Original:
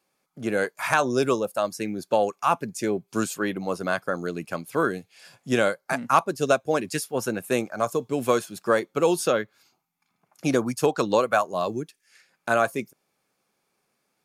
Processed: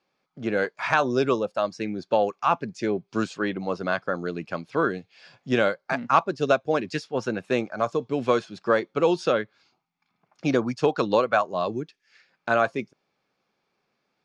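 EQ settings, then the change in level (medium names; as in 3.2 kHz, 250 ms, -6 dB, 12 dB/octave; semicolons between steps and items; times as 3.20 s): low-pass 5.1 kHz 24 dB/octave; 0.0 dB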